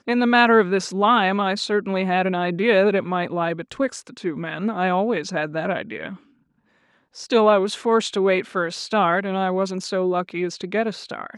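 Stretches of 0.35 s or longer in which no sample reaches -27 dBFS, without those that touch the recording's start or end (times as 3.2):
6.13–7.2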